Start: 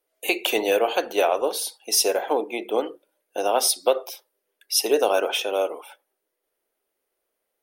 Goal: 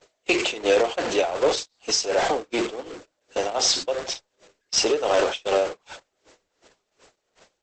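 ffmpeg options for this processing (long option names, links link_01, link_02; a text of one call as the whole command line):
ffmpeg -i in.wav -filter_complex "[0:a]aeval=exprs='val(0)+0.5*0.0841*sgn(val(0))':channel_layout=same,tremolo=f=2.7:d=0.71,asplit=2[link_01][link_02];[link_02]aeval=exprs='(mod(3.76*val(0)+1,2)-1)/3.76':channel_layout=same,volume=-12dB[link_03];[link_01][link_03]amix=inputs=2:normalize=0,agate=range=-38dB:threshold=-25dB:ratio=16:detection=peak" -ar 48000 -c:a libopus -b:a 10k out.opus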